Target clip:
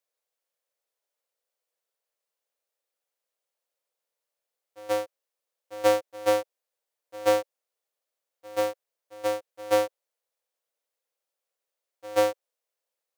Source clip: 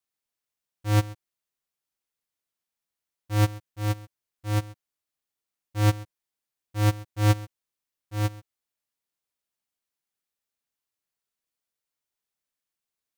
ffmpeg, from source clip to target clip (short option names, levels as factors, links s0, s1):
-af "areverse,highpass=f=520:t=q:w=4.3"